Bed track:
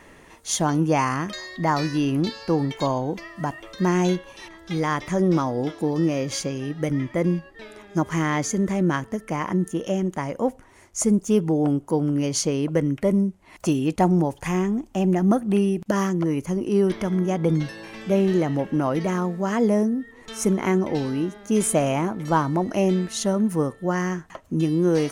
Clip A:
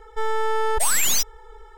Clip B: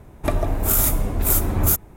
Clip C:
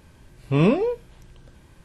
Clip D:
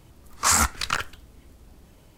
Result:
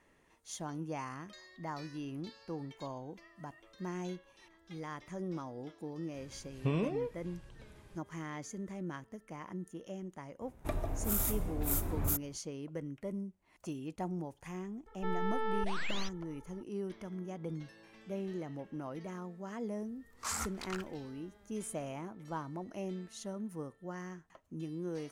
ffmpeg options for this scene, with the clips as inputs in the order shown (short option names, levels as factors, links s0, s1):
-filter_complex "[0:a]volume=0.106[s0];[3:a]acompressor=threshold=0.1:ratio=12:attack=10:release=994:knee=1:detection=peak[s1];[1:a]lowpass=f=3900:w=0.5412,lowpass=f=3900:w=1.3066[s2];[s1]atrim=end=1.84,asetpts=PTS-STARTPTS,volume=0.473,afade=t=in:d=0.004:c=hsin,afade=t=out:st=1.836:d=0.004:c=hsin,adelay=6140[s3];[2:a]atrim=end=1.96,asetpts=PTS-STARTPTS,volume=0.188,afade=t=in:d=0.004:c=hsin,afade=t=out:st=1.956:d=0.004:c=hsin,adelay=10410[s4];[s2]atrim=end=1.77,asetpts=PTS-STARTPTS,volume=0.237,afade=t=in:d=0.004:c=hsin,afade=t=out:st=1.766:d=0.004:c=hsin,adelay=14860[s5];[4:a]atrim=end=2.17,asetpts=PTS-STARTPTS,volume=0.126,afade=t=in:d=0.004:c=hsin,afade=t=out:st=2.166:d=0.004:c=hsin,adelay=19800[s6];[s0][s3][s4][s5][s6]amix=inputs=5:normalize=0"